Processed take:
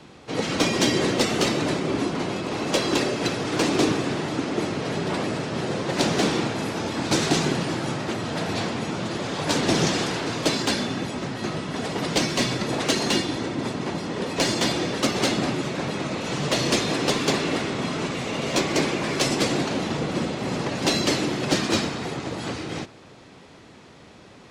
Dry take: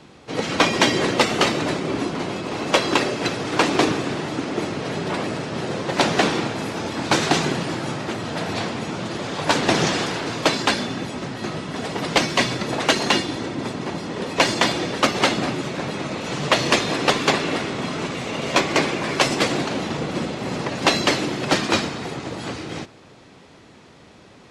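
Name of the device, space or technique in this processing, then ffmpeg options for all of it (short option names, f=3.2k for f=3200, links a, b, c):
one-band saturation: -filter_complex "[0:a]acrossover=split=490|3900[a][b][c];[b]asoftclip=type=tanh:threshold=-26dB[d];[a][d][c]amix=inputs=3:normalize=0"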